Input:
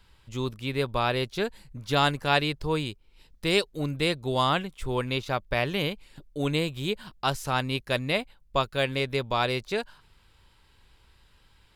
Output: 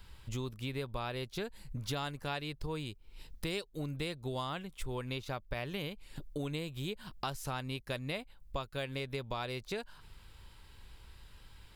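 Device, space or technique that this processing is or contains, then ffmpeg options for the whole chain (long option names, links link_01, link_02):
ASMR close-microphone chain: -af "lowshelf=frequency=130:gain=5.5,acompressor=threshold=-38dB:ratio=5,highshelf=frequency=11000:gain=7.5,volume=1.5dB"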